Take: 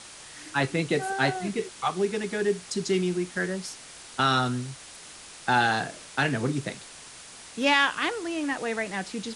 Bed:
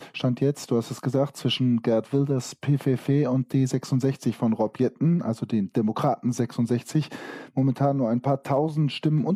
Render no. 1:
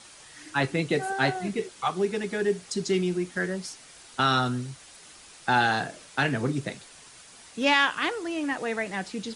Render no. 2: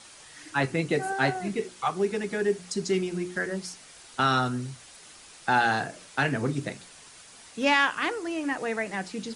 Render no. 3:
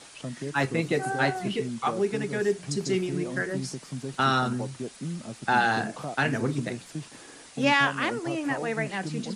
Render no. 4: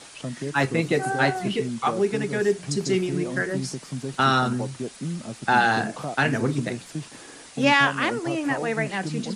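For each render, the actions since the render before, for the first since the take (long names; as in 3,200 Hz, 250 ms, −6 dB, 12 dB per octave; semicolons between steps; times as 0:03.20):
broadband denoise 6 dB, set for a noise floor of −46 dBFS
mains-hum notches 60/120/180/240/300/360 Hz; dynamic equaliser 3,500 Hz, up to −5 dB, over −47 dBFS, Q 2.7
mix in bed −12.5 dB
level +3.5 dB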